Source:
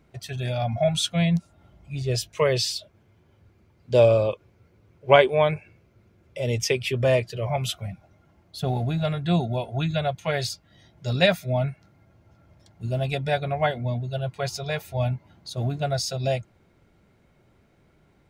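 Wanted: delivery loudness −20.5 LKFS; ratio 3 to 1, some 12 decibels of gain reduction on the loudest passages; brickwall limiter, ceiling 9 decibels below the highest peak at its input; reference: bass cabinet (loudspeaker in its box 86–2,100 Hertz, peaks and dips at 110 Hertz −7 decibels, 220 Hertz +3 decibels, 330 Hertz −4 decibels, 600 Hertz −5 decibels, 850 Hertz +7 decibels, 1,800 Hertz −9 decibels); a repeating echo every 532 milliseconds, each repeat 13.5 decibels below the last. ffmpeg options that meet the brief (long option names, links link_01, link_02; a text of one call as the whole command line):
ffmpeg -i in.wav -af "acompressor=threshold=-27dB:ratio=3,alimiter=limit=-22.5dB:level=0:latency=1,highpass=frequency=86:width=0.5412,highpass=frequency=86:width=1.3066,equalizer=frequency=110:width_type=q:width=4:gain=-7,equalizer=frequency=220:width_type=q:width=4:gain=3,equalizer=frequency=330:width_type=q:width=4:gain=-4,equalizer=frequency=600:width_type=q:width=4:gain=-5,equalizer=frequency=850:width_type=q:width=4:gain=7,equalizer=frequency=1800:width_type=q:width=4:gain=-9,lowpass=frequency=2100:width=0.5412,lowpass=frequency=2100:width=1.3066,aecho=1:1:532|1064:0.211|0.0444,volume=14.5dB" out.wav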